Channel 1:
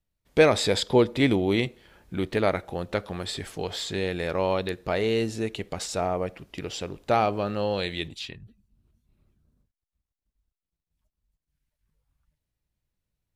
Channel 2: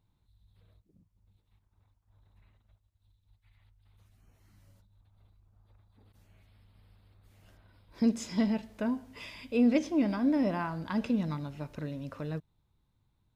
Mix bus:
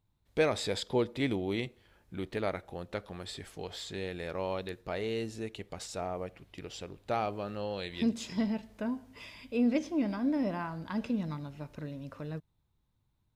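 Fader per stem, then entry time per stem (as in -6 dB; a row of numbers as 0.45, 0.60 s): -9.5, -3.0 dB; 0.00, 0.00 s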